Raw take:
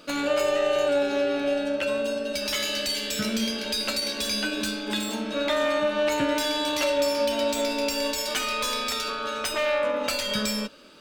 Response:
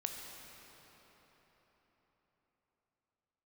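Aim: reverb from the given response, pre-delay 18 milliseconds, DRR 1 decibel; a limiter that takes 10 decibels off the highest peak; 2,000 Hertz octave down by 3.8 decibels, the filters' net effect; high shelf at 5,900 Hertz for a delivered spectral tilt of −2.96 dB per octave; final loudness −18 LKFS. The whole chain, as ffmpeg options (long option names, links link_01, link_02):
-filter_complex "[0:a]equalizer=frequency=2000:width_type=o:gain=-4.5,highshelf=frequency=5900:gain=-6,alimiter=limit=-24dB:level=0:latency=1,asplit=2[link_01][link_02];[1:a]atrim=start_sample=2205,adelay=18[link_03];[link_02][link_03]afir=irnorm=-1:irlink=0,volume=-1.5dB[link_04];[link_01][link_04]amix=inputs=2:normalize=0,volume=11dB"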